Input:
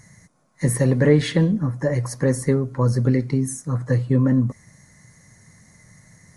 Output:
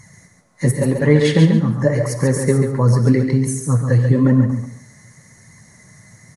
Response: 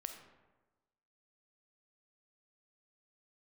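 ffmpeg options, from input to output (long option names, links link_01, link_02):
-filter_complex "[0:a]asettb=1/sr,asplit=3[link_01][link_02][link_03];[link_01]atrim=end=0.714[link_04];[link_02]atrim=start=0.71:end=1.25,asetpts=PTS-STARTPTS,afade=type=in:duration=0.004:curve=qsin,afade=type=out:start_time=0.536:duration=0.004:curve=qsin,agate=range=-33dB:threshold=-13dB:ratio=3:detection=peak[link_05];[link_03]atrim=start=1.246[link_06];[link_04][link_05]acrossfade=duration=0.004:curve1=hsin:curve2=qsin[link_07];[link_07][link_06]acrossfade=duration=0.004:curve1=qsin:curve2=hsin,asplit=2[link_08][link_09];[link_09]highpass=55[link_10];[1:a]atrim=start_sample=2205,atrim=end_sample=4410,asetrate=29547,aresample=44100[link_11];[link_10][link_11]afir=irnorm=-1:irlink=0,volume=5.5dB[link_12];[link_08][link_12]amix=inputs=2:normalize=0,flanger=delay=0.9:depth=8.5:regen=47:speed=0.9:shape=sinusoidal,aecho=1:1:139|278|417:0.501|0.115|0.0265"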